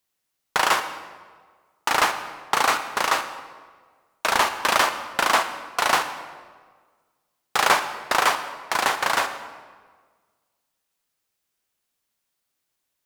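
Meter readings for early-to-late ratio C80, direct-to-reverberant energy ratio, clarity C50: 11.5 dB, 9.0 dB, 10.0 dB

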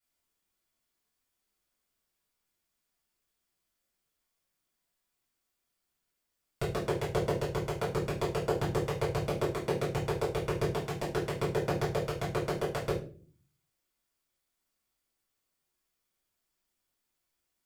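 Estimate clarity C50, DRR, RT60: 7.0 dB, -9.0 dB, 0.45 s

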